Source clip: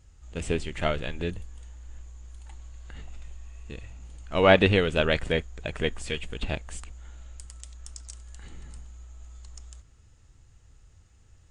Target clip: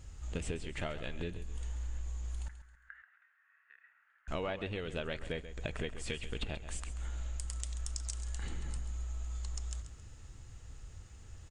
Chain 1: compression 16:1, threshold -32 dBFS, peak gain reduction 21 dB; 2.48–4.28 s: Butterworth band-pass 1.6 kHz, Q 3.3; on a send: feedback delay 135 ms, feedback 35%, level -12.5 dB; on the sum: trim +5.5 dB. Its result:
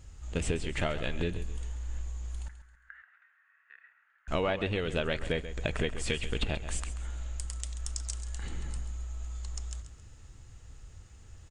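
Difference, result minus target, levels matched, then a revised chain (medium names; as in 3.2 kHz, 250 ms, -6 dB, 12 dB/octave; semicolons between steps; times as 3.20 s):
compression: peak gain reduction -7.5 dB
compression 16:1, threshold -40 dBFS, peak gain reduction 28.5 dB; 2.48–4.28 s: Butterworth band-pass 1.6 kHz, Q 3.3; on a send: feedback delay 135 ms, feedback 35%, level -12.5 dB; on the sum: trim +5.5 dB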